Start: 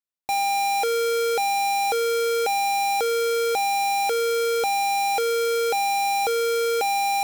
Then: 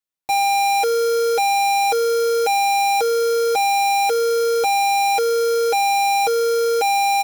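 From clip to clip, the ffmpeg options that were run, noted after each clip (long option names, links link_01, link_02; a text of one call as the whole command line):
ffmpeg -i in.wav -af "aecho=1:1:6.3:0.82" out.wav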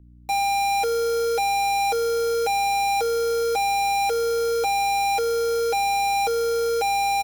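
ffmpeg -i in.wav -filter_complex "[0:a]aeval=exprs='val(0)+0.00708*(sin(2*PI*60*n/s)+sin(2*PI*2*60*n/s)/2+sin(2*PI*3*60*n/s)/3+sin(2*PI*4*60*n/s)/4+sin(2*PI*5*60*n/s)/5)':channel_layout=same,acrossover=split=270|6400[link_01][link_02][link_03];[link_03]volume=24.5dB,asoftclip=hard,volume=-24.5dB[link_04];[link_01][link_02][link_04]amix=inputs=3:normalize=0,asplit=2[link_05][link_06];[link_06]adelay=419.8,volume=-28dB,highshelf=frequency=4000:gain=-9.45[link_07];[link_05][link_07]amix=inputs=2:normalize=0,volume=-4.5dB" out.wav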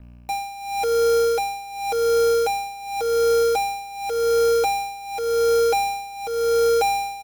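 ffmpeg -i in.wav -filter_complex "[0:a]asplit=2[link_01][link_02];[link_02]asoftclip=type=hard:threshold=-25dB,volume=-8dB[link_03];[link_01][link_03]amix=inputs=2:normalize=0,acrusher=bits=8:mix=0:aa=0.5,tremolo=f=0.9:d=0.89,volume=3.5dB" out.wav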